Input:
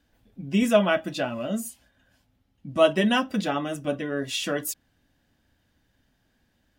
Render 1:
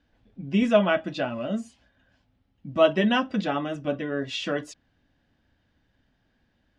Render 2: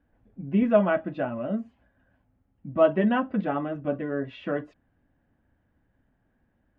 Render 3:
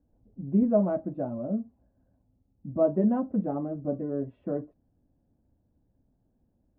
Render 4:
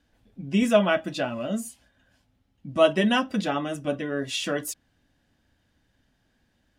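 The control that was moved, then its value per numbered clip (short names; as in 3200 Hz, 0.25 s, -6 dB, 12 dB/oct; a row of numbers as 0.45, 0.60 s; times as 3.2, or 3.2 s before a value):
Bessel low-pass, frequency: 4000, 1400, 520, 11000 Hz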